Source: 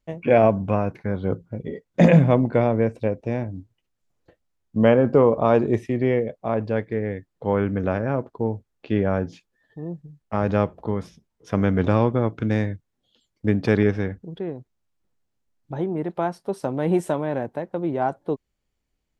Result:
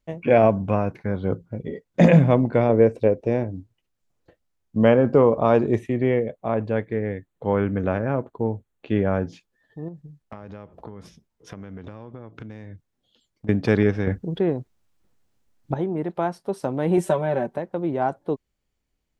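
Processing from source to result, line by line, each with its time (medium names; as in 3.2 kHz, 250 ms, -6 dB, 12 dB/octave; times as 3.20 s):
2.69–3.56 s: peaking EQ 430 Hz +7.5 dB 0.93 oct
5.79–9.22 s: peaking EQ 5.1 kHz -13.5 dB 0.26 oct
9.88–13.49 s: compression 20:1, threshold -33 dBFS
14.07–15.74 s: gain +8 dB
16.97–17.58 s: comb 5.2 ms, depth 83%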